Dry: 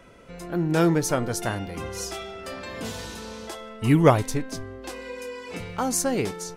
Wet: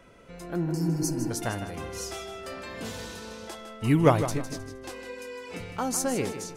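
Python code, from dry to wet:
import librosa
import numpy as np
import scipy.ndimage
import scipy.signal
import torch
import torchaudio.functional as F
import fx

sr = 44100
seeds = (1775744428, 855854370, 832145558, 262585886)

y = fx.spec_repair(x, sr, seeds[0], start_s=0.69, length_s=0.59, low_hz=270.0, high_hz=4200.0, source='before')
y = fx.echo_feedback(y, sr, ms=156, feedback_pct=31, wet_db=-10.5)
y = y * 10.0 ** (-3.5 / 20.0)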